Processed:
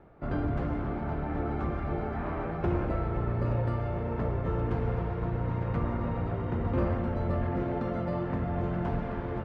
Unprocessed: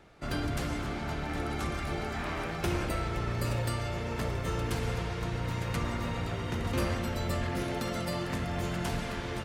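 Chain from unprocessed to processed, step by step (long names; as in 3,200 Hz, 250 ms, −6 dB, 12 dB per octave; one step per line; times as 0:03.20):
low-pass filter 1,100 Hz 12 dB per octave
level +3 dB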